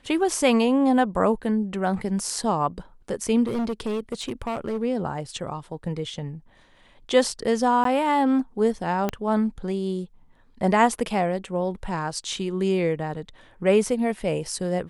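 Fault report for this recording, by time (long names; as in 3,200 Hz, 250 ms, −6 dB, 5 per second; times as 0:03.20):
0:03.46–0:04.83: clipping −23 dBFS
0:07.84–0:07.85: drop-out 13 ms
0:09.09: click −11 dBFS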